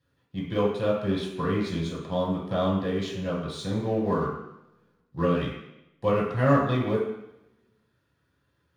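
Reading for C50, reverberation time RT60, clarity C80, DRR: 3.0 dB, 0.85 s, 6.0 dB, −6.5 dB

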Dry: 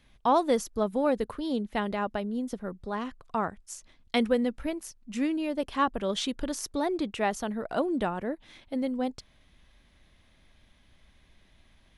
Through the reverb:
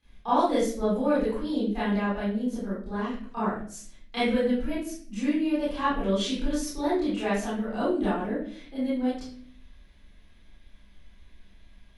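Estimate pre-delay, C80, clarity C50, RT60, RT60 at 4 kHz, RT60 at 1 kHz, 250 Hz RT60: 25 ms, 5.5 dB, −0.5 dB, 0.50 s, 0.40 s, 0.45 s, 0.75 s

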